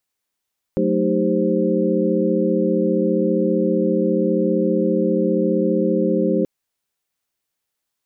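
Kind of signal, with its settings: chord F#3/A3/D#4/G4/C5 sine, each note -22 dBFS 5.68 s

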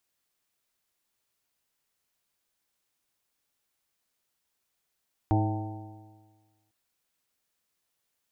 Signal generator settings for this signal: stretched partials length 1.40 s, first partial 105 Hz, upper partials -14/-3/-19/-19.5/-13/-6.5/-13.5 dB, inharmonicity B 0.0022, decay 1.48 s, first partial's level -21.5 dB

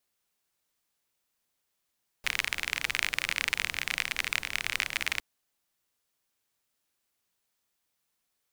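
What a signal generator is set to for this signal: rain from filtered ticks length 2.96 s, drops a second 38, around 2200 Hz, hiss -15.5 dB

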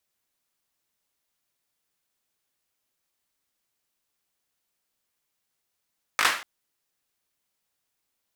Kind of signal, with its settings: hand clap length 0.24 s, apart 19 ms, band 1500 Hz, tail 0.42 s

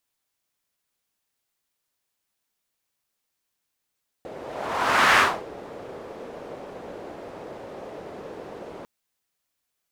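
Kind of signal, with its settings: whoosh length 4.60 s, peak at 0.93, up 0.90 s, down 0.28 s, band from 500 Hz, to 1500 Hz, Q 1.7, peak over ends 22 dB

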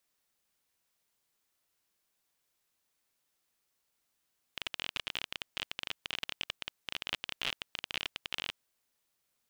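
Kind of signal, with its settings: random clicks 27/s -17.5 dBFS 3.95 s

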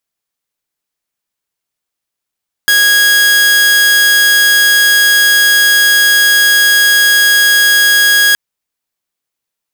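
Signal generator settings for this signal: tone saw 1650 Hz -3.5 dBFS 5.67 s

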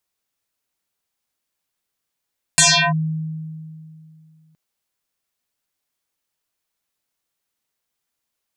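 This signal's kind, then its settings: FM tone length 1.97 s, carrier 158 Hz, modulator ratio 5.39, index 11, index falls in 0.35 s linear, decay 2.63 s, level -8.5 dB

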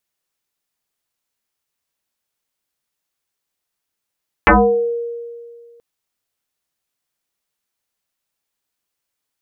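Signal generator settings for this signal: FM tone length 1.33 s, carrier 470 Hz, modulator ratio 0.56, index 8.1, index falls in 0.50 s exponential, decay 2.03 s, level -5 dB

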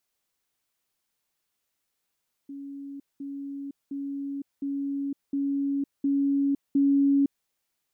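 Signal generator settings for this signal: level ladder 279 Hz -36 dBFS, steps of 3 dB, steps 7, 0.51 s 0.20 s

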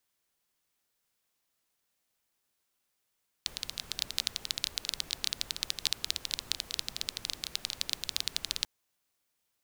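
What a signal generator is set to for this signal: rain from filtered ticks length 5.19 s, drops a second 15, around 4000 Hz, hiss -14 dB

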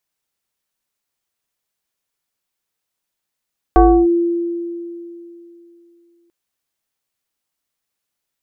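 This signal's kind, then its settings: FM tone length 2.54 s, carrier 342 Hz, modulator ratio 1.15, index 1.5, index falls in 0.31 s linear, decay 2.99 s, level -4.5 dB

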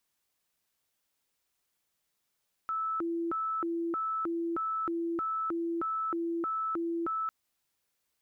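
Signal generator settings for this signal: siren hi-lo 336–1310 Hz 1.6/s sine -29.5 dBFS 4.60 s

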